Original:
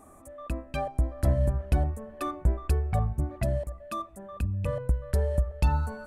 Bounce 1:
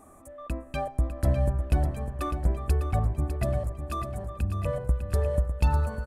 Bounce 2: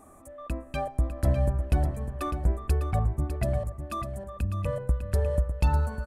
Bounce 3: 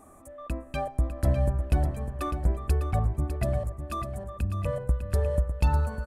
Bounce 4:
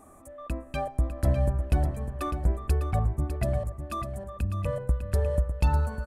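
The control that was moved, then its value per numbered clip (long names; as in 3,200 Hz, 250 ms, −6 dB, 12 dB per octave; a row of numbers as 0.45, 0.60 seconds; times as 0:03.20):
repeating echo, feedback: 60, 18, 40, 26%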